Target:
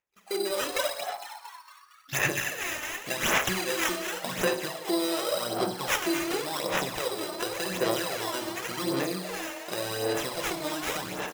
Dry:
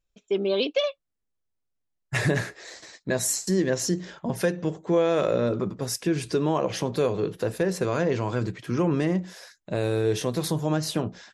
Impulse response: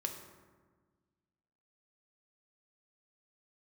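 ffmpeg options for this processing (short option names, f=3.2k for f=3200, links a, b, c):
-filter_complex "[0:a]bandreject=f=7.4k:w=10,acompressor=threshold=-32dB:ratio=8,highpass=f=420:p=1,highshelf=f=8.8k:g=2.5[a];[1:a]atrim=start_sample=2205,afade=t=out:st=0.26:d=0.01,atrim=end_sample=11907,asetrate=42777,aresample=44100[b];[a][b]afir=irnorm=-1:irlink=0,acrusher=samples=10:mix=1:aa=0.000001,asplit=2[c][d];[d]asetrate=88200,aresample=44100,atempo=0.5,volume=-17dB[e];[c][e]amix=inputs=2:normalize=0,asplit=7[f][g][h][i][j][k][l];[g]adelay=229,afreqshift=140,volume=-9dB[m];[h]adelay=458,afreqshift=280,volume=-14.7dB[n];[i]adelay=687,afreqshift=420,volume=-20.4dB[o];[j]adelay=916,afreqshift=560,volume=-26dB[p];[k]adelay=1145,afreqshift=700,volume=-31.7dB[q];[l]adelay=1374,afreqshift=840,volume=-37.4dB[r];[f][m][n][o][p][q][r]amix=inputs=7:normalize=0,dynaudnorm=f=160:g=3:m=13.5dB,tiltshelf=f=970:g=-5,aphaser=in_gain=1:out_gain=1:delay=3.3:decay=0.53:speed=0.89:type=sinusoidal,volume=-7dB"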